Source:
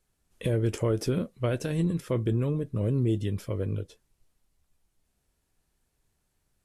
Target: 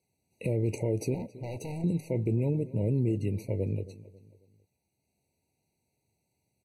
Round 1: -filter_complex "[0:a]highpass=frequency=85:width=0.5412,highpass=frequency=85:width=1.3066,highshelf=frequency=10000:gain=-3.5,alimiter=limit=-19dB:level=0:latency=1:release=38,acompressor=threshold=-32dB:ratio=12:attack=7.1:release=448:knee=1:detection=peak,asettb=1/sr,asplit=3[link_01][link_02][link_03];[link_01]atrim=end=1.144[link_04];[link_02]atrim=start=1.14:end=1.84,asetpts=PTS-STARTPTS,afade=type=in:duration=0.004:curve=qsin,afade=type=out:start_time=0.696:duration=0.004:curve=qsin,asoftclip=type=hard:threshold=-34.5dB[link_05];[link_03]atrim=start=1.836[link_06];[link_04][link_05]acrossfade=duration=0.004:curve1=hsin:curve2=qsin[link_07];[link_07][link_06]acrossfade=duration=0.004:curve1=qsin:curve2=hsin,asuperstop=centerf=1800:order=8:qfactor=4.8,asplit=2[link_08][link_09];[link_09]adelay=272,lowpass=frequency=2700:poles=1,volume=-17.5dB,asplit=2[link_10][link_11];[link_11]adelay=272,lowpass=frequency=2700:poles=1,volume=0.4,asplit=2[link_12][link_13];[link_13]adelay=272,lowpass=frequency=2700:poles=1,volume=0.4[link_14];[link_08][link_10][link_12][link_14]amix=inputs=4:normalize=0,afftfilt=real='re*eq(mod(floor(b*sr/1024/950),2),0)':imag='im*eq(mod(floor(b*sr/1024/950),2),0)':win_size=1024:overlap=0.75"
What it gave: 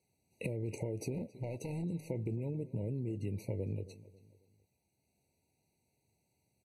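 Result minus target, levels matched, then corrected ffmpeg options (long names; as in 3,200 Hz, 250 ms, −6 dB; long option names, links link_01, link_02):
downward compressor: peak gain reduction +11 dB
-filter_complex "[0:a]highpass=frequency=85:width=0.5412,highpass=frequency=85:width=1.3066,highshelf=frequency=10000:gain=-3.5,alimiter=limit=-19dB:level=0:latency=1:release=38,asettb=1/sr,asplit=3[link_01][link_02][link_03];[link_01]atrim=end=1.144[link_04];[link_02]atrim=start=1.14:end=1.84,asetpts=PTS-STARTPTS,afade=type=in:duration=0.004:curve=qsin,afade=type=out:start_time=0.696:duration=0.004:curve=qsin,asoftclip=type=hard:threshold=-34.5dB[link_05];[link_03]atrim=start=1.836[link_06];[link_04][link_05]acrossfade=duration=0.004:curve1=hsin:curve2=qsin[link_07];[link_07][link_06]acrossfade=duration=0.004:curve1=qsin:curve2=hsin,asuperstop=centerf=1800:order=8:qfactor=4.8,asplit=2[link_08][link_09];[link_09]adelay=272,lowpass=frequency=2700:poles=1,volume=-17.5dB,asplit=2[link_10][link_11];[link_11]adelay=272,lowpass=frequency=2700:poles=1,volume=0.4,asplit=2[link_12][link_13];[link_13]adelay=272,lowpass=frequency=2700:poles=1,volume=0.4[link_14];[link_08][link_10][link_12][link_14]amix=inputs=4:normalize=0,afftfilt=real='re*eq(mod(floor(b*sr/1024/950),2),0)':imag='im*eq(mod(floor(b*sr/1024/950),2),0)':win_size=1024:overlap=0.75"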